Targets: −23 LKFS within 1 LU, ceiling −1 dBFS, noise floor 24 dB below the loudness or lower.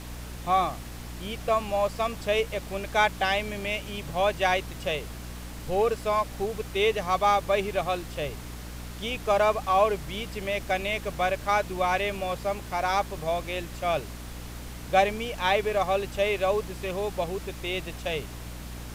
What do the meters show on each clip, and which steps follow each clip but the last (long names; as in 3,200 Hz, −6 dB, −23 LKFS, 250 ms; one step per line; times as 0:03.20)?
mains hum 60 Hz; hum harmonics up to 300 Hz; level of the hum −38 dBFS; background noise floor −39 dBFS; target noise floor −52 dBFS; integrated loudness −27.5 LKFS; sample peak −9.5 dBFS; target loudness −23.0 LKFS
→ mains-hum notches 60/120/180/240/300 Hz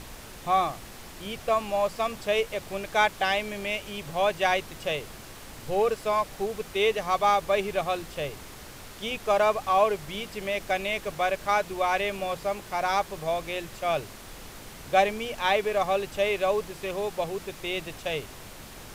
mains hum none found; background noise floor −44 dBFS; target noise floor −52 dBFS
→ noise reduction from a noise print 8 dB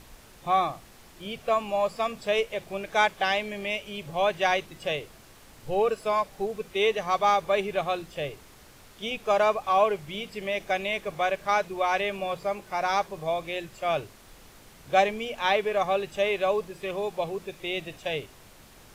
background noise floor −52 dBFS; integrated loudness −27.5 LKFS; sample peak −10.0 dBFS; target loudness −23.0 LKFS
→ level +4.5 dB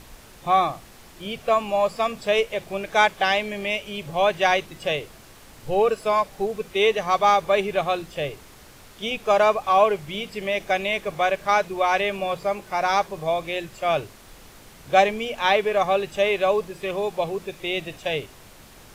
integrated loudness −23.0 LKFS; sample peak −5.5 dBFS; background noise floor −48 dBFS